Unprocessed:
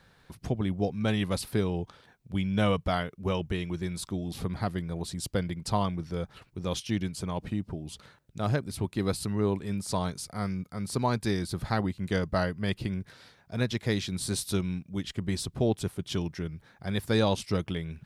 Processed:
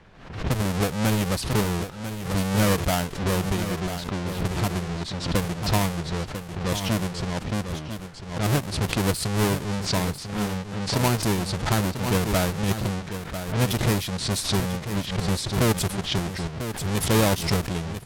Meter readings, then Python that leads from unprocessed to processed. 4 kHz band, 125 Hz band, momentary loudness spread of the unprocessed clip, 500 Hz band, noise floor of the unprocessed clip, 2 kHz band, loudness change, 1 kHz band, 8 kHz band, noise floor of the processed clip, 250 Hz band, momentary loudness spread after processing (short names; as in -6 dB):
+8.0 dB, +6.5 dB, 8 LU, +4.0 dB, -62 dBFS, +7.5 dB, +5.5 dB, +6.0 dB, +9.5 dB, -38 dBFS, +4.5 dB, 8 LU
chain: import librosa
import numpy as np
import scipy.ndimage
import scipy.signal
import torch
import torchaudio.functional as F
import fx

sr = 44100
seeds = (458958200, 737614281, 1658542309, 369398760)

y = fx.halfwave_hold(x, sr)
y = fx.env_lowpass(y, sr, base_hz=2200.0, full_db=-20.5)
y = fx.high_shelf(y, sr, hz=9100.0, db=8.5)
y = fx.dmg_noise_colour(y, sr, seeds[0], colour='pink', level_db=-54.0)
y = fx.env_lowpass(y, sr, base_hz=3000.0, full_db=-22.5)
y = y + 10.0 ** (-10.0 / 20.0) * np.pad(y, (int(995 * sr / 1000.0), 0))[:len(y)]
y = fx.pre_swell(y, sr, db_per_s=84.0)